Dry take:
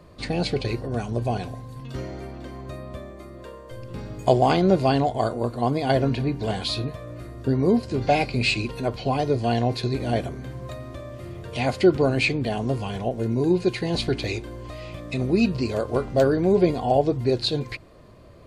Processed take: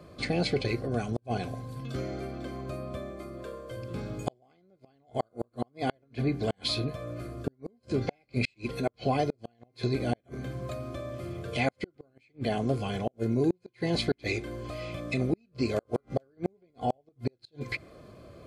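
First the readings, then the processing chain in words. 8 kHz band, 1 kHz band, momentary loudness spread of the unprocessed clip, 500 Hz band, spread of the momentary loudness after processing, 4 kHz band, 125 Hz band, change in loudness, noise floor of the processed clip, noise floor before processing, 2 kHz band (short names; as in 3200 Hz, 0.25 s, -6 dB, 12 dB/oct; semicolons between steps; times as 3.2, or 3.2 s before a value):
-7.0 dB, -10.0 dB, 18 LU, -10.0 dB, 10 LU, -7.0 dB, -7.5 dB, -9.5 dB, -70 dBFS, -43 dBFS, -7.0 dB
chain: dynamic EQ 2000 Hz, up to +8 dB, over -53 dBFS, Q 5.9; notch comb 940 Hz; in parallel at -3 dB: compressor 10:1, threshold -32 dBFS, peak gain reduction 20 dB; on the sum: flipped gate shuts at -12 dBFS, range -41 dB; gain -4 dB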